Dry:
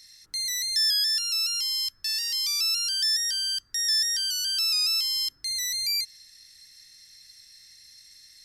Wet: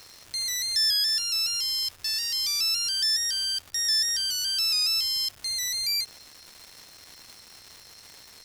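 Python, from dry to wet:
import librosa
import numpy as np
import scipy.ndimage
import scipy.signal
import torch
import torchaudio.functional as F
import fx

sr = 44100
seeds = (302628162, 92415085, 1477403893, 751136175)

y = fx.peak_eq(x, sr, hz=90.0, db=11.5, octaves=0.94)
y = fx.dmg_crackle(y, sr, seeds[0], per_s=460.0, level_db=-36.0)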